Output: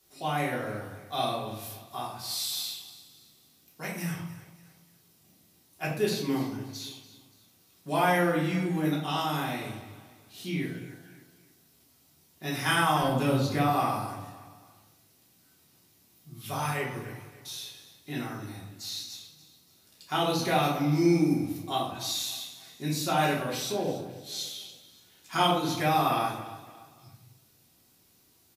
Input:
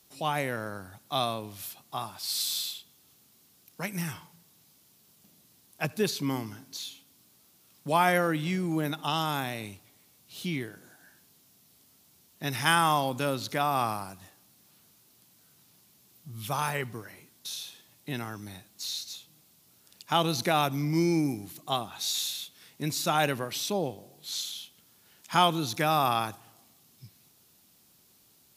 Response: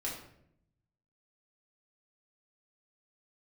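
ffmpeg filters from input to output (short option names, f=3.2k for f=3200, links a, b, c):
-filter_complex "[0:a]asettb=1/sr,asplit=3[a][b][c];[a]atrim=end=13.024[d];[b]atrim=start=13.02:end=13.64,asetpts=PTS-STARTPTS,afade=t=in:d=0.004:c=qsin,afade=t=out:st=0.616:d=0.004:c=qsin,lowshelf=f=240:g=11.5[e];[c]atrim=start=13.636[f];[d][e]acrossfade=d=0.004:c1=hsin:c2=qsin[g];[g][f]acrossfade=d=0.004:c1=qsin:c2=hsin,aecho=1:1:286|572|858:0.158|0.0602|0.0229[h];[1:a]atrim=start_sample=2205,afade=t=out:st=0.37:d=0.01,atrim=end_sample=16758[i];[h][i]afir=irnorm=-1:irlink=0,volume=-2.5dB"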